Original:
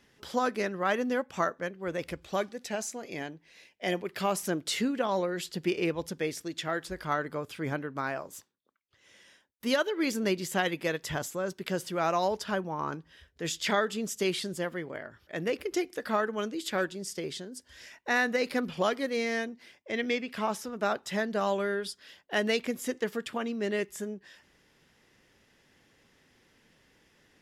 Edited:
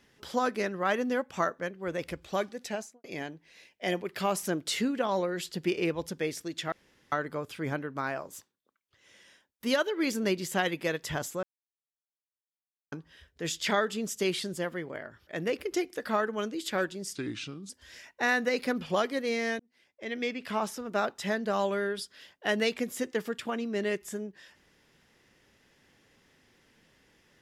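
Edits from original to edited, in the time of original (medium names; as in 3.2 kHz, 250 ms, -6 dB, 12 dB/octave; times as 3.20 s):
2.69–3.04 s: studio fade out
6.72–7.12 s: room tone
11.43–12.92 s: mute
17.15–17.57 s: speed 77%
19.47–20.33 s: fade in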